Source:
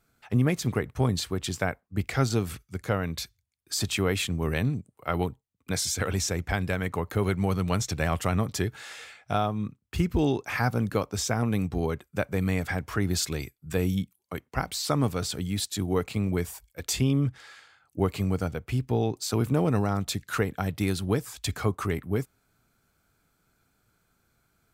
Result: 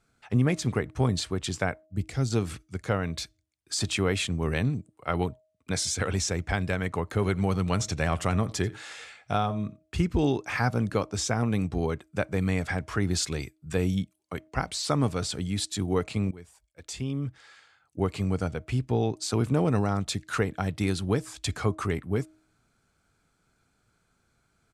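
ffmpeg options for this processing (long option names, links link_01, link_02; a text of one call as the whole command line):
ffmpeg -i in.wav -filter_complex "[0:a]asplit=3[link_01][link_02][link_03];[link_01]afade=type=out:start_time=1.85:duration=0.02[link_04];[link_02]equalizer=frequency=1300:width=0.38:gain=-12,afade=type=in:start_time=1.85:duration=0.02,afade=type=out:start_time=2.31:duration=0.02[link_05];[link_03]afade=type=in:start_time=2.31:duration=0.02[link_06];[link_04][link_05][link_06]amix=inputs=3:normalize=0,asplit=3[link_07][link_08][link_09];[link_07]afade=type=out:start_time=7.16:duration=0.02[link_10];[link_08]aecho=1:1:87:0.0891,afade=type=in:start_time=7.16:duration=0.02,afade=type=out:start_time=9.97:duration=0.02[link_11];[link_09]afade=type=in:start_time=9.97:duration=0.02[link_12];[link_10][link_11][link_12]amix=inputs=3:normalize=0,asplit=2[link_13][link_14];[link_13]atrim=end=16.31,asetpts=PTS-STARTPTS,afade=type=out:start_time=16.306:duration=0.004:curve=hsin:silence=0.0944061[link_15];[link_14]atrim=start=16.31,asetpts=PTS-STARTPTS,afade=type=in:duration=2.14:silence=0.0944061[link_16];[link_15][link_16]concat=n=2:v=0:a=1,lowpass=frequency=9900:width=0.5412,lowpass=frequency=9900:width=1.3066,bandreject=frequency=314.3:width_type=h:width=4,bandreject=frequency=628.6:width_type=h:width=4" out.wav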